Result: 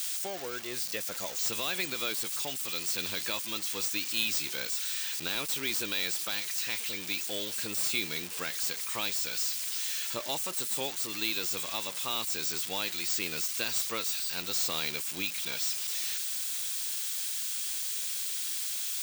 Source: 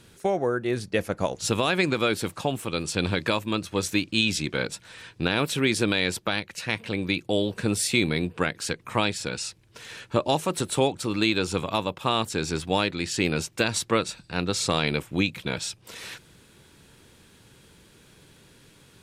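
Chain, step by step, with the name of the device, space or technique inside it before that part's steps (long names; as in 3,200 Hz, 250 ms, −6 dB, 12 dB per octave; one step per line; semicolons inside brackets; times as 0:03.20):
first-order pre-emphasis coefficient 0.8
low-shelf EQ 170 Hz −11 dB
budget class-D amplifier (gap after every zero crossing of 0.052 ms; spike at every zero crossing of −23 dBFS)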